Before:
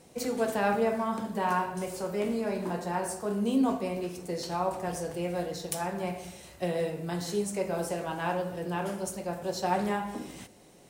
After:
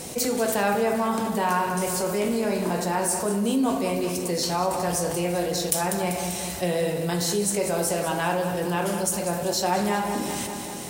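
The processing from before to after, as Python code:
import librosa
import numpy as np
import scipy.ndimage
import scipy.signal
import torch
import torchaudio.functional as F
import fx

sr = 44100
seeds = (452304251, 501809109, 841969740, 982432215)

y = fx.high_shelf(x, sr, hz=4200.0, db=9.5)
y = fx.echo_feedback(y, sr, ms=195, feedback_pct=55, wet_db=-12)
y = fx.env_flatten(y, sr, amount_pct=50)
y = y * 10.0 ** (1.5 / 20.0)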